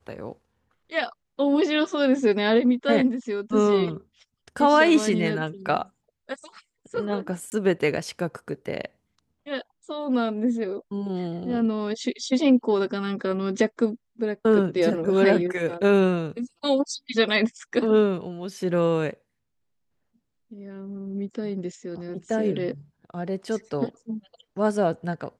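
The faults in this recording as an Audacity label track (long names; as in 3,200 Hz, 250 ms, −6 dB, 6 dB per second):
7.500000	7.520000	drop-out 19 ms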